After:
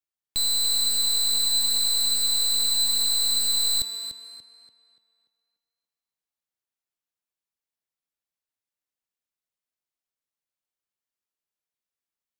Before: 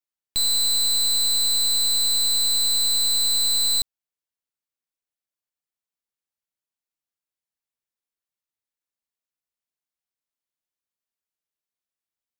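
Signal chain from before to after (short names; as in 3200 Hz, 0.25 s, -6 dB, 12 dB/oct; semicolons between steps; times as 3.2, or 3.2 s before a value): tape echo 0.29 s, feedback 43%, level -4.5 dB, low-pass 5200 Hz; gain -2.5 dB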